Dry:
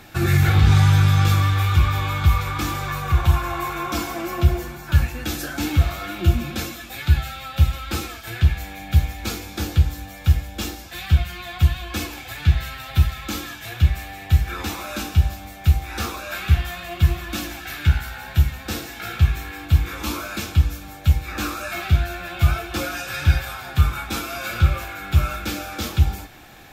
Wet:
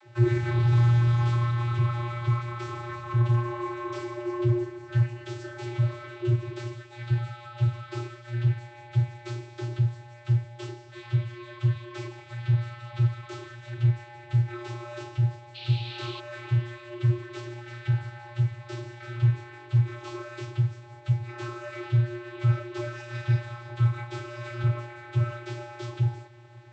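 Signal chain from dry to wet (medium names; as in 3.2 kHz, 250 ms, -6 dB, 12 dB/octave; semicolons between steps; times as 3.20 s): vocoder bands 32, square 119 Hz; 15.54–16.19 s: band noise 2.4–4.3 kHz -42 dBFS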